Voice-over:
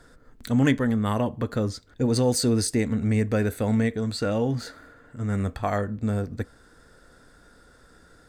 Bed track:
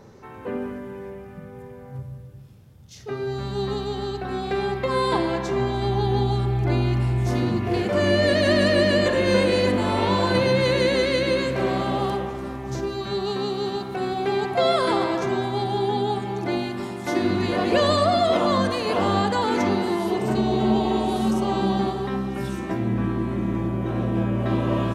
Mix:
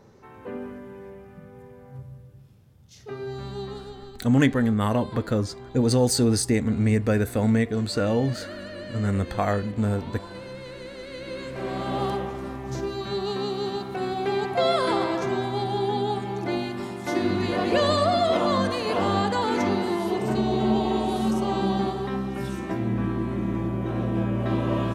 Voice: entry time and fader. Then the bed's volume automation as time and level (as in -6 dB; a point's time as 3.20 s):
3.75 s, +1.5 dB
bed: 3.49 s -5.5 dB
4.37 s -19 dB
10.95 s -19 dB
12.02 s -2 dB